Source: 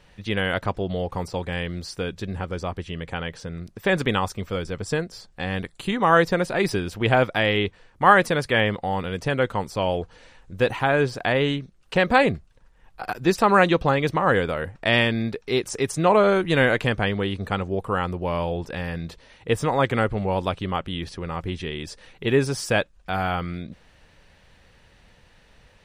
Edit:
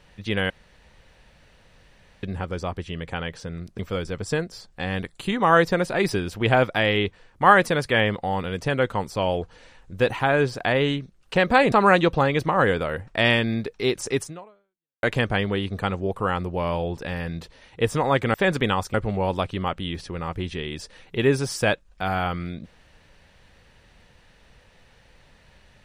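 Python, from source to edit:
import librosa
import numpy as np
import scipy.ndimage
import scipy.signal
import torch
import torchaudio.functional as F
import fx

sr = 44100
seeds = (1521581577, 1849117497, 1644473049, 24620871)

y = fx.edit(x, sr, fx.room_tone_fill(start_s=0.5, length_s=1.73),
    fx.move(start_s=3.79, length_s=0.6, to_s=20.02),
    fx.cut(start_s=12.32, length_s=1.08),
    fx.fade_out_span(start_s=15.89, length_s=0.82, curve='exp'), tone=tone)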